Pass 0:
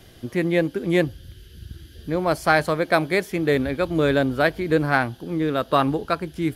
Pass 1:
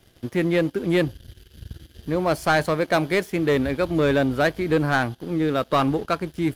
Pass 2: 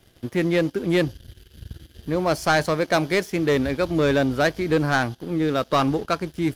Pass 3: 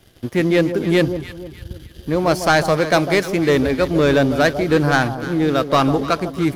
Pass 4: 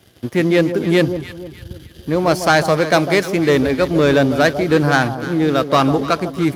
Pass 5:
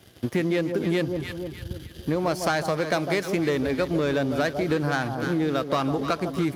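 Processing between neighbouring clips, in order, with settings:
leveller curve on the samples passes 2; level −6.5 dB
dynamic equaliser 5,600 Hz, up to +7 dB, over −51 dBFS, Q 1.9
delay that swaps between a low-pass and a high-pass 151 ms, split 980 Hz, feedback 59%, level −9 dB; level +4.5 dB
high-pass filter 73 Hz; level +1.5 dB
downward compressor, threshold −20 dBFS, peak gain reduction 11 dB; level −1.5 dB

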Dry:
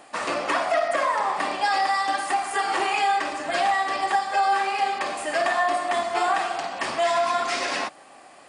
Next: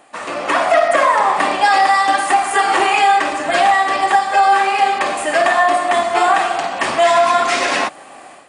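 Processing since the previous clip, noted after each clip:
parametric band 4,900 Hz −5 dB 0.47 octaves
automatic gain control gain up to 12 dB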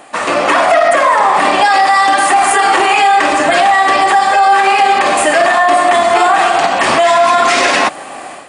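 boost into a limiter +11.5 dB
level −1 dB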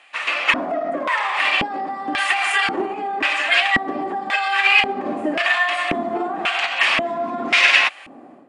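auto-filter band-pass square 0.93 Hz 250–2,600 Hz
expander for the loud parts 1.5 to 1, over −30 dBFS
level +5 dB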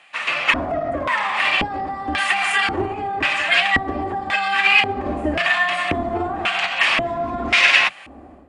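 sub-octave generator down 2 octaves, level −3 dB

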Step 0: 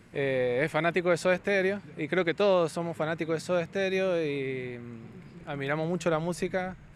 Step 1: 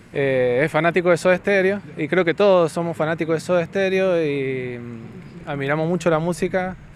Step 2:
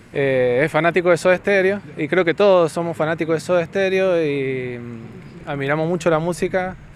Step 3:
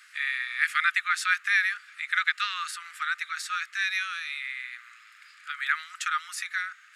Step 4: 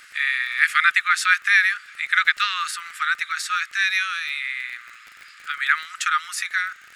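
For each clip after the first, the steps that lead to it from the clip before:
dynamic equaliser 4,900 Hz, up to −4 dB, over −48 dBFS, Q 0.73; level +9 dB
parametric band 180 Hz −3.5 dB 0.26 octaves; level +1.5 dB
Chebyshev high-pass with heavy ripple 1,200 Hz, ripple 3 dB
surface crackle 30 per second −40 dBFS; level +7 dB

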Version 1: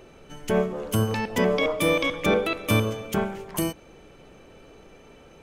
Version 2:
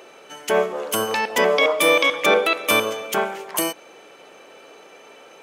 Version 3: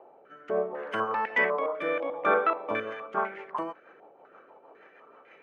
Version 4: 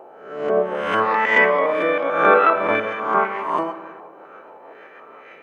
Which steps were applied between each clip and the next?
high-pass filter 520 Hz 12 dB per octave; level +8.5 dB
rotating-speaker cabinet horn 0.7 Hz, later 6.3 Hz, at 0:02.50; low-pass on a step sequencer 4 Hz 830–2,000 Hz; level −9 dB
peak hold with a rise ahead of every peak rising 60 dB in 0.71 s; comb and all-pass reverb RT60 1.7 s, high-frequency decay 0.45×, pre-delay 35 ms, DRR 12 dB; level +8.5 dB

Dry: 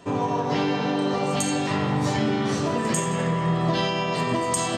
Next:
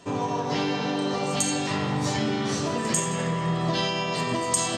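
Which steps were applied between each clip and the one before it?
parametric band 6,100 Hz +6.5 dB 1.9 octaves
level −3 dB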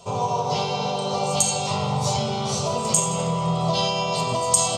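phaser with its sweep stopped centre 720 Hz, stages 4
level +6.5 dB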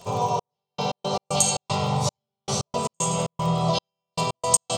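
surface crackle 35 per second −32 dBFS
gate pattern "xxx...x.x.xx." 115 BPM −60 dB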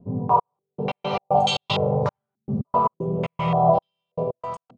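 fade-out on the ending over 0.74 s
low-pass on a step sequencer 3.4 Hz 250–3,300 Hz

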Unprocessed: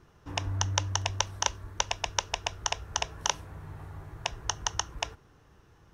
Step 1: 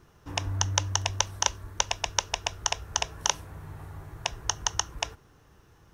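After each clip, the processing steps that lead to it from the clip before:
high-shelf EQ 8,000 Hz +8.5 dB
level +1 dB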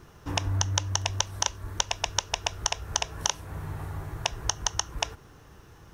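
downward compressor 3 to 1, threshold −31 dBFS, peak gain reduction 10.5 dB
level +6.5 dB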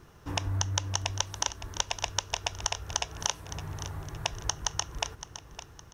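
repeating echo 563 ms, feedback 40%, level −12.5 dB
level −3 dB

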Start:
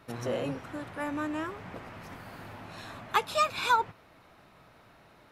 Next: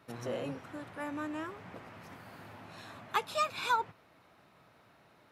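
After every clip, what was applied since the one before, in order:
high-pass filter 85 Hz
level −5 dB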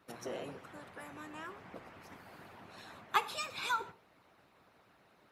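harmonic and percussive parts rebalanced harmonic −16 dB
reverb whose tail is shaped and stops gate 200 ms falling, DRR 11.5 dB
level +1.5 dB

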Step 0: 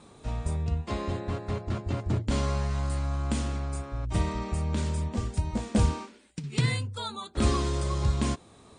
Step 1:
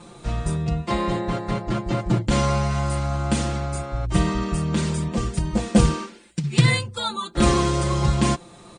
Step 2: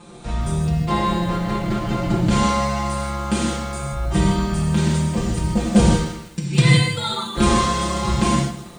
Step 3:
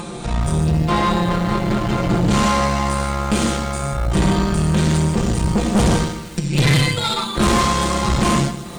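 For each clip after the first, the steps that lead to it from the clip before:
comb filter 5.8 ms, depth 98%; level +6 dB
reverb whose tail is shaped and stops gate 180 ms flat, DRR −1.5 dB; feedback echo at a low word length 160 ms, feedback 35%, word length 6 bits, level −14 dB; level −1 dB
tube saturation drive 19 dB, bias 0.7; upward compression, threshold −29 dBFS; level +7.5 dB

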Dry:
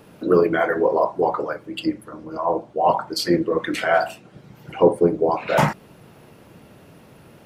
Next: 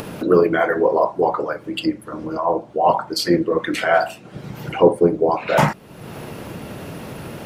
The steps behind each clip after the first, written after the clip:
upward compression, threshold −22 dBFS
level +2 dB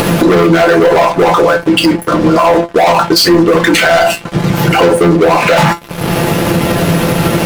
leveller curve on the samples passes 5
tuned comb filter 170 Hz, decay 0.15 s, harmonics all, mix 80%
boost into a limiter +12 dB
level −1 dB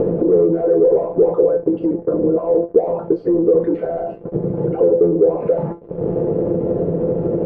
downward compressor, threshold −11 dBFS, peak gain reduction 6.5 dB
low-pass with resonance 460 Hz, resonance Q 4.9
level −8.5 dB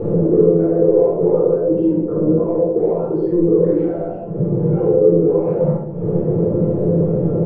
convolution reverb RT60 0.80 s, pre-delay 20 ms, DRR −8.5 dB
level −12 dB

